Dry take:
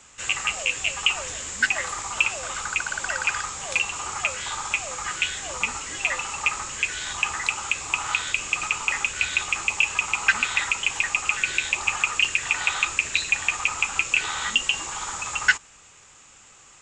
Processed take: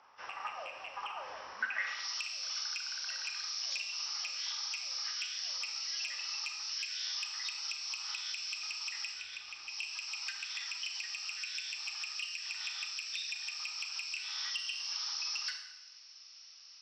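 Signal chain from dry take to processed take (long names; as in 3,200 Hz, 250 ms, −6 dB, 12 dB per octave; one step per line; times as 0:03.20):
hearing-aid frequency compression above 3,100 Hz 1.5 to 1
downward compressor 4 to 1, threshold −27 dBFS, peak gain reduction 12.5 dB
gain into a clipping stage and back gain 20 dB
band-pass filter sweep 910 Hz → 4,800 Hz, 0:01.56–0:02.09
0:09.13–0:09.69: RIAA equalisation playback
four-comb reverb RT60 1 s, combs from 28 ms, DRR 4.5 dB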